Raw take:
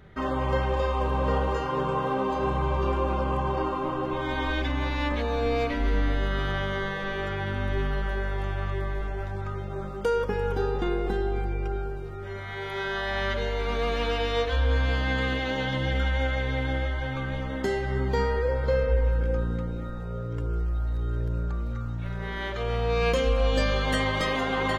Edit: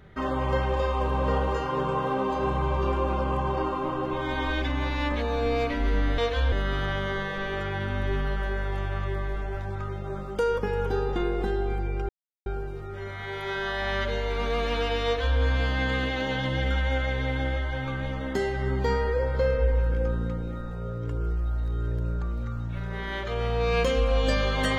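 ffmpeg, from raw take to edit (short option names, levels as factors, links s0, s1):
-filter_complex "[0:a]asplit=4[s0][s1][s2][s3];[s0]atrim=end=6.182[s4];[s1]atrim=start=14.338:end=14.682[s5];[s2]atrim=start=6.178:end=11.75,asetpts=PTS-STARTPTS,afade=t=out:st=5.568:d=0.004:c=hsin,apad=pad_dur=0.37[s6];[s3]atrim=start=11.75,asetpts=PTS-STARTPTS,afade=t=in:d=0.004:c=hsin[s7];[s4][s5]acrossfade=d=0.004:c1=hsin:c2=hsin[s8];[s6][s7]concat=n=2:v=0:a=1[s9];[s8][s9]acrossfade=d=0.004:c1=hsin:c2=hsin"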